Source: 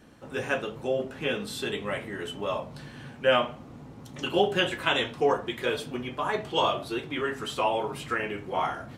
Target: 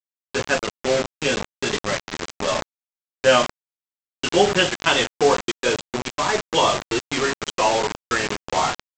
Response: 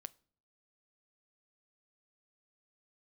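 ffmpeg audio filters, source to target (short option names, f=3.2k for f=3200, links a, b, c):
-af "afftdn=nr=15:nf=-38,aresample=16000,acrusher=bits=4:mix=0:aa=0.000001,aresample=44100,volume=6.5dB"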